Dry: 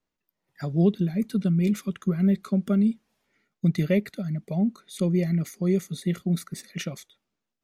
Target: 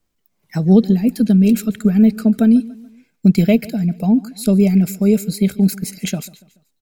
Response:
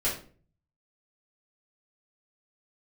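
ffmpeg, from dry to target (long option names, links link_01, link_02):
-af "aemphasis=mode=production:type=cd,asetrate=49392,aresample=44100,lowshelf=frequency=190:gain=11,aecho=1:1:143|286|429:0.0944|0.0406|0.0175,volume=6dB"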